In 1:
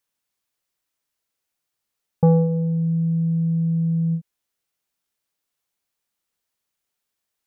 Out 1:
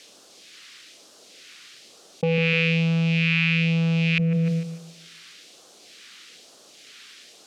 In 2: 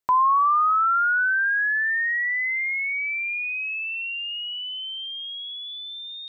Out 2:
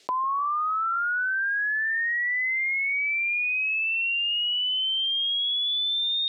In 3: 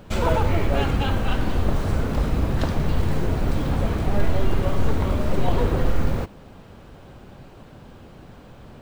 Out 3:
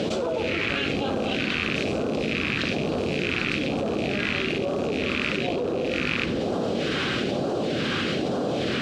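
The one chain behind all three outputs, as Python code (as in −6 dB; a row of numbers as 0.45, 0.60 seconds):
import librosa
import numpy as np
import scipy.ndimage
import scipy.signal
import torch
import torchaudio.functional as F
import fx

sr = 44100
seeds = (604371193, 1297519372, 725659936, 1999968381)

p1 = fx.rattle_buzz(x, sr, strikes_db=-25.0, level_db=-21.0)
p2 = fx.peak_eq(p1, sr, hz=930.0, db=-9.5, octaves=0.3)
p3 = fx.phaser_stages(p2, sr, stages=2, low_hz=590.0, high_hz=2000.0, hz=1.1, feedback_pct=30)
p4 = 10.0 ** (-17.0 / 20.0) * np.tanh(p3 / 10.0 ** (-17.0 / 20.0))
p5 = p3 + (p4 * librosa.db_to_amplitude(-11.0))
p6 = fx.bandpass_edges(p5, sr, low_hz=390.0, high_hz=3800.0)
p7 = fx.echo_wet_lowpass(p6, sr, ms=150, feedback_pct=32, hz=560.0, wet_db=-9.5)
p8 = fx.env_flatten(p7, sr, amount_pct=100)
y = p8 * 10.0 ** (-26 / 20.0) / np.sqrt(np.mean(np.square(p8)))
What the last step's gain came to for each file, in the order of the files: +1.5, −2.0, −1.5 decibels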